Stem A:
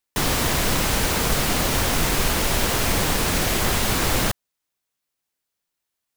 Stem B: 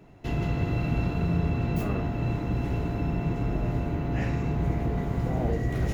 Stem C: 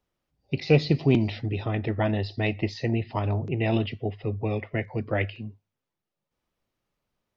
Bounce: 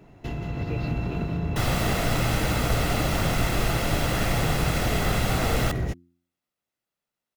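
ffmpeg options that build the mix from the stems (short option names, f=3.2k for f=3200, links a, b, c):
-filter_complex "[0:a]bass=f=250:g=-2,treble=f=4k:g=-7,aecho=1:1:1.5:0.45,adelay=1400,volume=-10dB[a];[1:a]volume=1.5dB[b];[2:a]highpass=150,volume=-15.5dB[c];[b][c]amix=inputs=2:normalize=0,acompressor=threshold=-29dB:ratio=6,volume=0dB[d];[a][d]amix=inputs=2:normalize=0,dynaudnorm=f=410:g=3:m=5.5dB,bandreject=f=86.59:t=h:w=4,bandreject=f=173.18:t=h:w=4,bandreject=f=259.77:t=h:w=4,bandreject=f=346.36:t=h:w=4"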